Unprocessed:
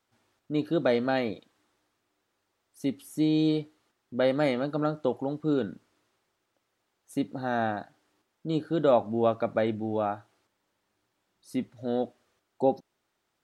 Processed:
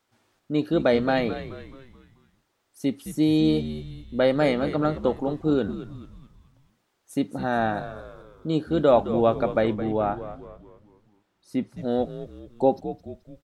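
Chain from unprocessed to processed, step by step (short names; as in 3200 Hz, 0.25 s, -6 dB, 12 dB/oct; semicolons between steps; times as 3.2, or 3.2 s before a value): 9.73–11.77 high shelf 4400 Hz -9 dB; frequency-shifting echo 0.215 s, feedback 46%, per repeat -84 Hz, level -12 dB; gain +4 dB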